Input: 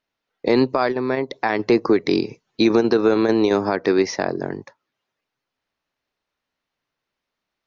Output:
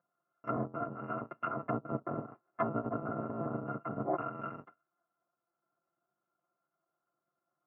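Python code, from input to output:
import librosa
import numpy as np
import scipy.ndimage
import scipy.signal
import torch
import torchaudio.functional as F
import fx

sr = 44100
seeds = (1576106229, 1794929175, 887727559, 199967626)

y = fx.bit_reversed(x, sr, seeds[0], block=256)
y = fx.env_lowpass_down(y, sr, base_hz=670.0, full_db=-15.0)
y = scipy.signal.sosfilt(scipy.signal.ellip(3, 1.0, 50, [150.0, 1300.0], 'bandpass', fs=sr, output='sos'), y)
y = fx.air_absorb(y, sr, metres=290.0)
y = y + 0.98 * np.pad(y, (int(5.8 * sr / 1000.0), 0))[:len(y)]
y = F.gain(torch.from_numpy(y), 8.0).numpy()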